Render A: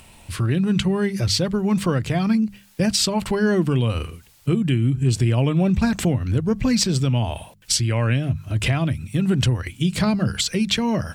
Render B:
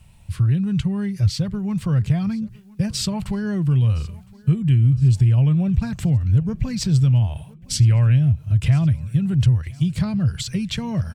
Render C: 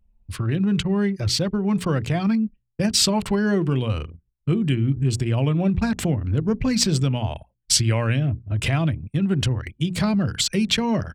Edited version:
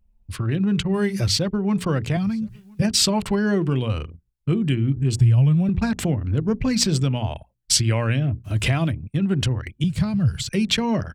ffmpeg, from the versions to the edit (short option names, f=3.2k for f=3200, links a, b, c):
-filter_complex "[0:a]asplit=2[a][b];[1:a]asplit=3[c][d][e];[2:a]asplit=6[f][g][h][i][j][k];[f]atrim=end=0.942[l];[a]atrim=start=0.938:end=1.372[m];[g]atrim=start=1.368:end=2.172[n];[c]atrim=start=2.168:end=2.822[o];[h]atrim=start=2.818:end=5.192[p];[d]atrim=start=5.188:end=5.692[q];[i]atrim=start=5.688:end=8.46[r];[b]atrim=start=8.44:end=8.92[s];[j]atrim=start=8.9:end=9.842[t];[e]atrim=start=9.838:end=10.492[u];[k]atrim=start=10.488[v];[l][m]acrossfade=d=0.004:c1=hsin:c2=hsin[w];[w][n]acrossfade=d=0.004:c1=hsin:c2=hsin[x];[x][o]acrossfade=d=0.004:c1=hsin:c2=hsin[y];[y][p]acrossfade=d=0.004:c1=hsin:c2=hsin[z];[z][q]acrossfade=d=0.004:c1=hsin:c2=hsin[aa];[aa][r]acrossfade=d=0.004:c1=hsin:c2=hsin[ab];[ab][s]acrossfade=d=0.02:c1=tri:c2=tri[ac];[ac][t]acrossfade=d=0.02:c1=tri:c2=tri[ad];[ad][u]acrossfade=d=0.004:c1=hsin:c2=hsin[ae];[ae][v]acrossfade=d=0.004:c1=hsin:c2=hsin"